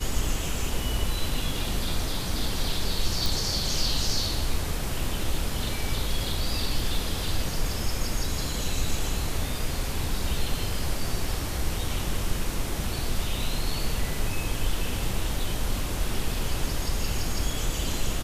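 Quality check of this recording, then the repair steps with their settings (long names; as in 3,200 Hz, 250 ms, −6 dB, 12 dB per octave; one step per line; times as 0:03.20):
0:03.26: click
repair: click removal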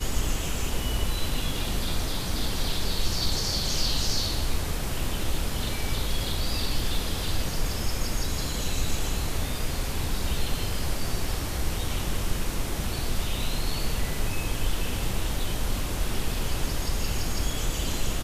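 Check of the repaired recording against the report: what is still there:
none of them is left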